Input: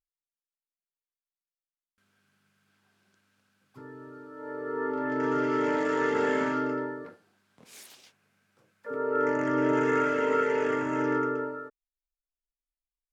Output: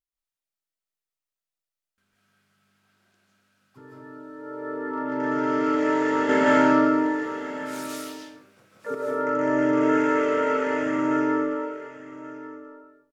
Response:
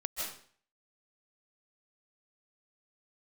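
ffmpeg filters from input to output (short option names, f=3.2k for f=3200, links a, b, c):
-filter_complex "[0:a]aecho=1:1:1134:0.168,asettb=1/sr,asplit=3[a][b][c];[a]atrim=end=6.294[d];[b]atrim=start=6.29:end=8.95,asetpts=PTS-STARTPTS,afade=t=in:d=0.004:c=qsin,afade=t=out:st=2.656:d=0.004:c=qsin,acontrast=90[e];[c]atrim=start=8.946[f];[d][e]acrossfade=d=0.004:c1=hsin:c2=qsin[g];[g][f]acrossfade=d=0.004:c1=qsin:c2=hsin[h];[1:a]atrim=start_sample=2205[i];[h][i]afir=irnorm=-1:irlink=0"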